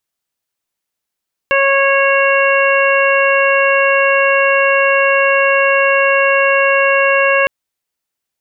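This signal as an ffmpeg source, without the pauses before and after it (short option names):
-f lavfi -i "aevalsrc='0.224*sin(2*PI*550*t)+0.141*sin(2*PI*1100*t)+0.168*sin(2*PI*1650*t)+0.112*sin(2*PI*2200*t)+0.15*sin(2*PI*2750*t)':d=5.96:s=44100"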